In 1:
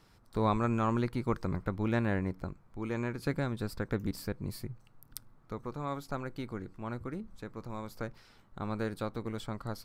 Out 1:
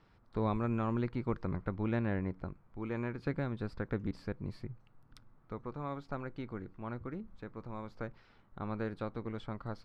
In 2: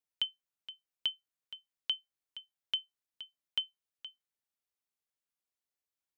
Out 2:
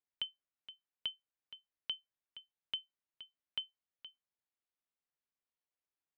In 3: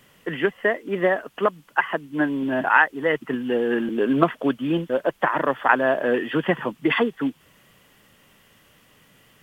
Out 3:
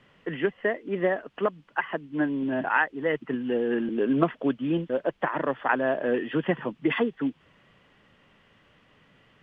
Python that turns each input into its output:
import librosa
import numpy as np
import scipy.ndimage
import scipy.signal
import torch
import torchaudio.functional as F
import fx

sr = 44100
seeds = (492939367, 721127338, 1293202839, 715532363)

y = fx.dynamic_eq(x, sr, hz=1200.0, q=0.72, threshold_db=-36.0, ratio=4.0, max_db=-5)
y = scipy.signal.sosfilt(scipy.signal.butter(2, 3000.0, 'lowpass', fs=sr, output='sos'), y)
y = y * librosa.db_to_amplitude(-2.5)